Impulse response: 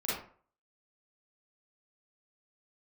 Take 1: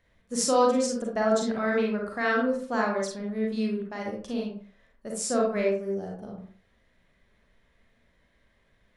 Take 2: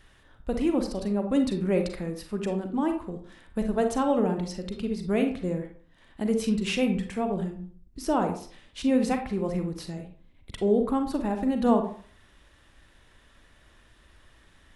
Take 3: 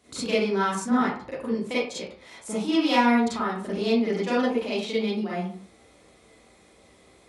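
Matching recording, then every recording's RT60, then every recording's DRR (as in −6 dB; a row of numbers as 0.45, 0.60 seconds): 3; 0.45, 0.45, 0.45 seconds; −2.0, 5.0, −9.0 decibels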